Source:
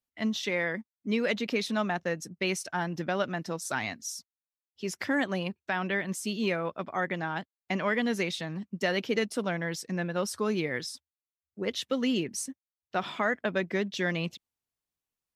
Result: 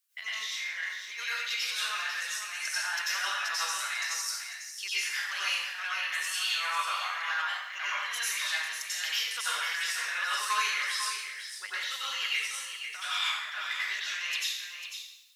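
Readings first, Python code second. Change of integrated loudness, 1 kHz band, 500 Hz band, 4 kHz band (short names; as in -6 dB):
+0.5 dB, +0.5 dB, -23.0 dB, +7.5 dB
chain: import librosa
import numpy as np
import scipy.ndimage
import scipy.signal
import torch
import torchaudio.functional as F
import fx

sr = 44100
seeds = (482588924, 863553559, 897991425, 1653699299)

p1 = scipy.signal.sosfilt(scipy.signal.butter(4, 1300.0, 'highpass', fs=sr, output='sos'), x)
p2 = fx.high_shelf(p1, sr, hz=5200.0, db=7.5)
p3 = fx.over_compress(p2, sr, threshold_db=-43.0, ratio=-1.0)
p4 = p3 + fx.echo_single(p3, sr, ms=497, db=-8.5, dry=0)
y = fx.rev_plate(p4, sr, seeds[0], rt60_s=0.84, hf_ratio=1.0, predelay_ms=80, drr_db=-9.5)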